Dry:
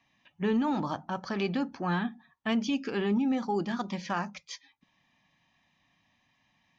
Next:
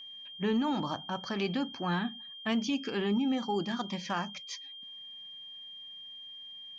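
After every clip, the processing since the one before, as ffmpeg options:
-af "highshelf=f=5300:g=5.5,aeval=exprs='val(0)+0.00794*sin(2*PI*3200*n/s)':c=same,volume=0.794"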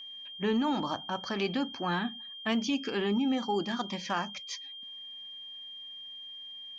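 -af "equalizer=f=150:t=o:w=0.72:g=-6.5,volume=1.26"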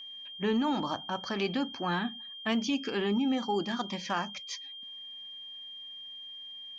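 -af anull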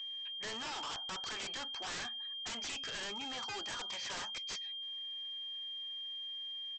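-af "highpass=960,aresample=16000,aeval=exprs='0.0133*(abs(mod(val(0)/0.0133+3,4)-2)-1)':c=same,aresample=44100,volume=1.19"

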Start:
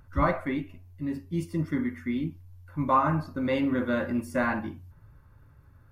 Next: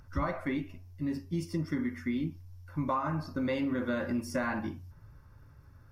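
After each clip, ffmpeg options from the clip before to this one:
-af "equalizer=f=5400:w=3.4:g=11,acompressor=threshold=0.0398:ratio=6"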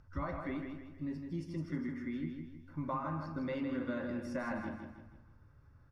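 -af "aemphasis=mode=reproduction:type=50fm,aecho=1:1:159|318|477|636|795:0.501|0.205|0.0842|0.0345|0.0142,volume=0.447"

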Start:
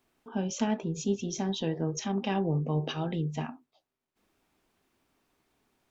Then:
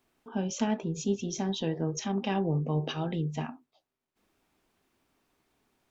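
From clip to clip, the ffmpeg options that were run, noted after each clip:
-af anull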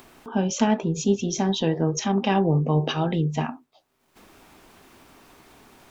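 -af "acompressor=mode=upward:threshold=0.00447:ratio=2.5,equalizer=f=1000:t=o:w=1.4:g=2.5,volume=2.37"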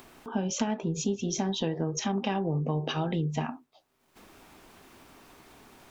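-af "acompressor=threshold=0.0708:ratio=6,volume=0.794"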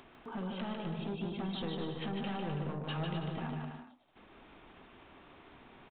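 -af "aresample=8000,asoftclip=type=tanh:threshold=0.0282,aresample=44100,aecho=1:1:150|255|328.5|380|416:0.631|0.398|0.251|0.158|0.1,volume=0.631"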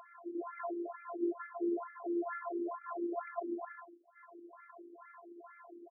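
-af "afftfilt=real='hypot(re,im)*cos(PI*b)':imag='0':win_size=512:overlap=0.75,highpass=220,lowpass=2300,afftfilt=real='re*between(b*sr/1024,300*pow(1700/300,0.5+0.5*sin(2*PI*2.2*pts/sr))/1.41,300*pow(1700/300,0.5+0.5*sin(2*PI*2.2*pts/sr))*1.41)':imag='im*between(b*sr/1024,300*pow(1700/300,0.5+0.5*sin(2*PI*2.2*pts/sr))/1.41,300*pow(1700/300,0.5+0.5*sin(2*PI*2.2*pts/sr))*1.41)':win_size=1024:overlap=0.75,volume=3.98"

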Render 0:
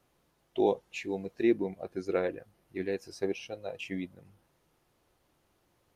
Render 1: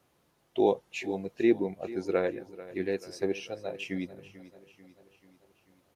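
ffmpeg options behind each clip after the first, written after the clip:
-af "highpass=67,aecho=1:1:440|880|1320|1760|2200:0.141|0.0763|0.0412|0.0222|0.012,volume=1.26"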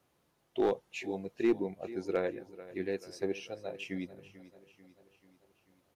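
-af "aeval=exprs='clip(val(0),-1,0.141)':c=same,volume=0.631"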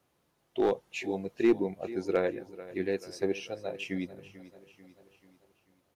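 -af "dynaudnorm=f=120:g=11:m=1.58"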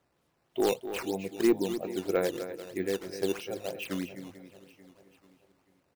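-af "aecho=1:1:252:0.282,acrusher=samples=8:mix=1:aa=0.000001:lfo=1:lforange=12.8:lforate=3.1"

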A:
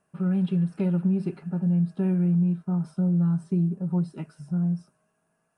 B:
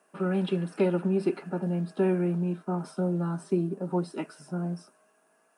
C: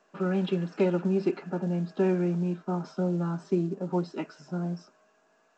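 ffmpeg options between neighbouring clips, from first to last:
-af "highpass=f=270:w=0.5412,highpass=f=270:w=1.3066,volume=2.51"
-ar 16000 -c:a pcm_mulaw

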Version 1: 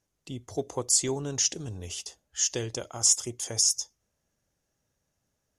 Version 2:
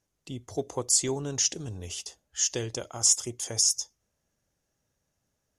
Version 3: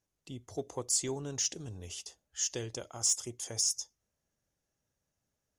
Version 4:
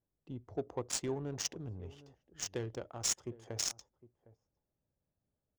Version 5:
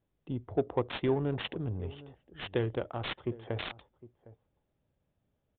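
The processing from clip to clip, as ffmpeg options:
-af anull
-af "asoftclip=type=tanh:threshold=0.282,volume=0.501"
-filter_complex "[0:a]asplit=2[s0][s1];[s1]adelay=758,volume=0.126,highshelf=f=4000:g=-17.1[s2];[s0][s2]amix=inputs=2:normalize=0,adynamicsmooth=sensitivity=5.5:basefreq=940"
-af "aresample=8000,aresample=44100,volume=2.66"

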